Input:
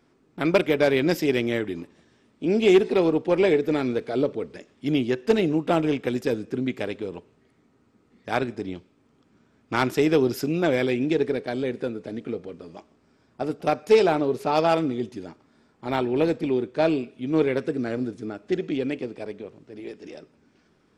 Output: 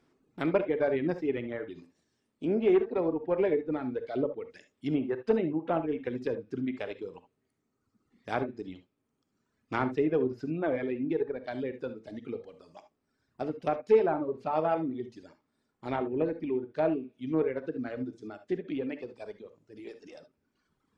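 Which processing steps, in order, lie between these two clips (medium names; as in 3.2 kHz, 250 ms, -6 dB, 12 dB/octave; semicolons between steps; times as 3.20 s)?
low-pass that closes with the level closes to 1.6 kHz, closed at -20.5 dBFS; reverb removal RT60 1.7 s; gated-style reverb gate 90 ms rising, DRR 10 dB; trim -6 dB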